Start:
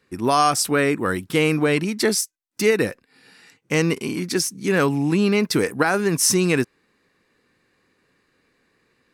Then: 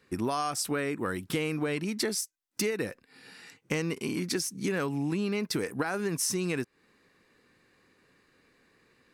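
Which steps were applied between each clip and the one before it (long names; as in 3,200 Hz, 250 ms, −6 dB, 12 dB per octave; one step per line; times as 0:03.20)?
downward compressor 6 to 1, threshold −28 dBFS, peak gain reduction 14.5 dB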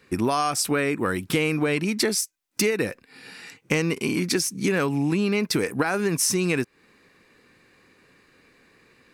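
parametric band 2,400 Hz +4 dB 0.24 octaves
level +7 dB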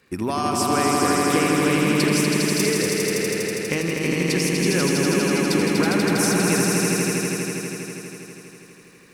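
surface crackle 260 per second −50 dBFS
echo that builds up and dies away 81 ms, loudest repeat 5, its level −4 dB
level −2.5 dB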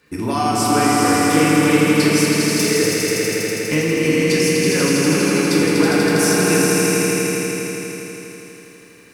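feedback delay network reverb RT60 1.1 s, low-frequency decay 0.85×, high-frequency decay 0.85×, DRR −2.5 dB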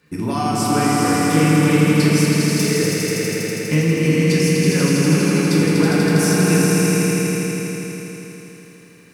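parametric band 160 Hz +10.5 dB 0.74 octaves
level −3 dB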